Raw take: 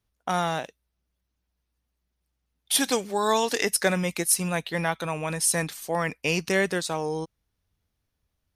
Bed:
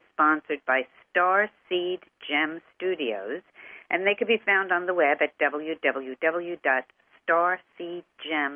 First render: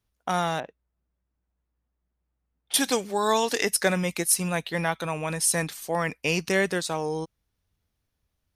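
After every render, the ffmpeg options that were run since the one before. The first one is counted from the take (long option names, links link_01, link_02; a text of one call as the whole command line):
ffmpeg -i in.wav -filter_complex "[0:a]asettb=1/sr,asplit=3[link_01][link_02][link_03];[link_01]atrim=end=0.604[link_04];[link_02]atrim=start=0.6:end=2.74,asetpts=PTS-STARTPTS,afade=type=in:duration=0.004:curve=qsin,afade=type=out:start_time=2.136:duration=0.004:curve=qsin,lowpass=1600[link_05];[link_03]atrim=start=2.736[link_06];[link_04][link_05]acrossfade=duration=0.004:curve1=hsin:curve2=qsin[link_07];[link_07][link_06]acrossfade=duration=0.004:curve1=qsin:curve2=hsin" out.wav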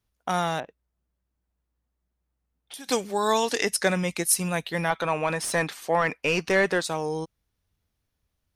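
ffmpeg -i in.wav -filter_complex "[0:a]asettb=1/sr,asplit=3[link_01][link_02][link_03];[link_01]atrim=end=0.644[link_04];[link_02]atrim=start=0.64:end=2.89,asetpts=PTS-STARTPTS,afade=type=in:duration=0.004:curve=qsin,afade=type=out:start_time=2.246:duration=0.004:curve=qsin,acompressor=threshold=-39dB:ratio=6:attack=3.2:release=140:knee=1:detection=peak[link_05];[link_03]atrim=start=2.886[link_06];[link_04][link_05]acrossfade=duration=0.004:curve1=hsin:curve2=qsin[link_07];[link_07][link_06]acrossfade=duration=0.004:curve1=qsin:curve2=hsin,asettb=1/sr,asplit=3[link_08][link_09][link_10];[link_08]atrim=end=3.504[link_11];[link_09]atrim=start=3.5:end=4.25,asetpts=PTS-STARTPTS,afade=type=in:duration=0.004:curve=qsin,afade=type=out:start_time=0.746:duration=0.004:curve=qsin,lowpass=10000[link_12];[link_10]atrim=start=4.246[link_13];[link_11][link_12]acrossfade=duration=0.004:curve1=hsin:curve2=qsin[link_14];[link_14][link_13]acrossfade=duration=0.004:curve1=qsin:curve2=hsin,asettb=1/sr,asplit=3[link_15][link_16][link_17];[link_15]atrim=end=4.904[link_18];[link_16]atrim=start=4.9:end=6.84,asetpts=PTS-STARTPTS,afade=type=in:duration=0.004:curve=qsin,afade=type=out:start_time=1.936:duration=0.004:curve=qsin,asplit=2[link_19][link_20];[link_20]highpass=frequency=720:poles=1,volume=15dB,asoftclip=type=tanh:threshold=-8.5dB[link_21];[link_19][link_21]amix=inputs=2:normalize=0,lowpass=frequency=1500:poles=1,volume=-6dB[link_22];[link_17]atrim=start=6.836[link_23];[link_18][link_22]acrossfade=duration=0.004:curve1=hsin:curve2=qsin[link_24];[link_24][link_23]acrossfade=duration=0.004:curve1=qsin:curve2=hsin" out.wav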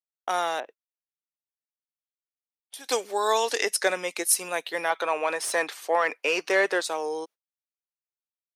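ffmpeg -i in.wav -af "agate=range=-40dB:threshold=-43dB:ratio=16:detection=peak,highpass=frequency=350:width=0.5412,highpass=frequency=350:width=1.3066" out.wav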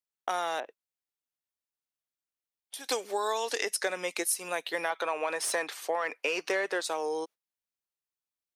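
ffmpeg -i in.wav -af "acompressor=threshold=-27dB:ratio=5" out.wav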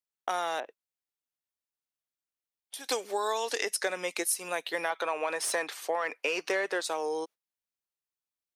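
ffmpeg -i in.wav -af anull out.wav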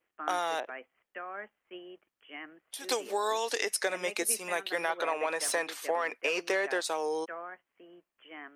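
ffmpeg -i in.wav -i bed.wav -filter_complex "[1:a]volume=-19.5dB[link_01];[0:a][link_01]amix=inputs=2:normalize=0" out.wav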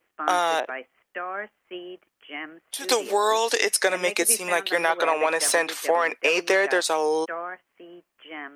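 ffmpeg -i in.wav -af "volume=9dB" out.wav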